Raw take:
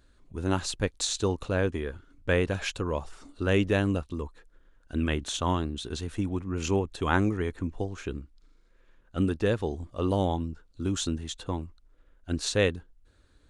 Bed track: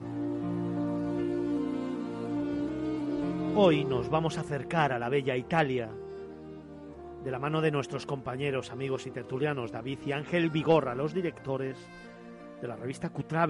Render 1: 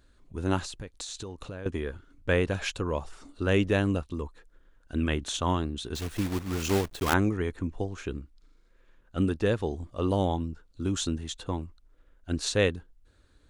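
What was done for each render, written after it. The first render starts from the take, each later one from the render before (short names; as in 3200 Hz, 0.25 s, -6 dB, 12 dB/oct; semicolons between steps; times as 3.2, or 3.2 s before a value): 0.64–1.66 compressor 8:1, threshold -35 dBFS; 5.95–7.14 block floating point 3-bit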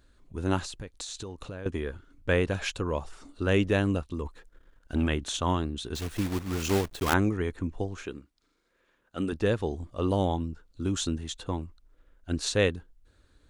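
4.25–5.08 sample leveller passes 1; 8.06–9.33 HPF 310 Hz 6 dB/oct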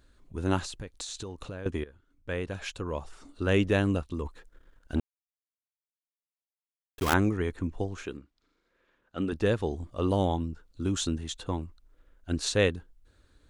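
1.84–3.62 fade in, from -17.5 dB; 5–6.98 mute; 8.17–9.32 air absorption 86 m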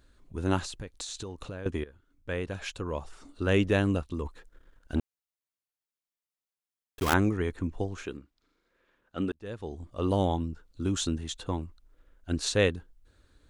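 9.32–10.14 fade in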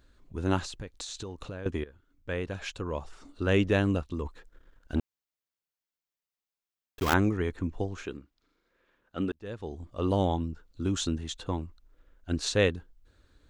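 bell 9800 Hz -7 dB 0.5 oct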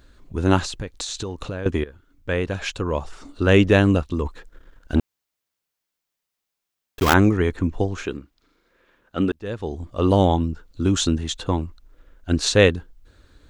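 gain +9.5 dB; limiter -2 dBFS, peak gain reduction 2.5 dB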